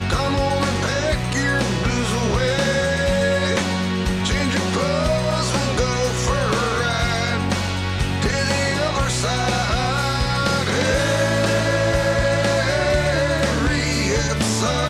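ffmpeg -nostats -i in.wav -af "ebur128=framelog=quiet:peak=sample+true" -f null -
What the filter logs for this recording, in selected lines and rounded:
Integrated loudness:
  I:         -19.8 LUFS
  Threshold: -29.8 LUFS
Loudness range:
  LRA:         1.7 LU
  Threshold: -39.8 LUFS
  LRA low:   -20.5 LUFS
  LRA high:  -18.8 LUFS
Sample peak:
  Peak:       -7.2 dBFS
True peak:
  Peak:       -7.2 dBFS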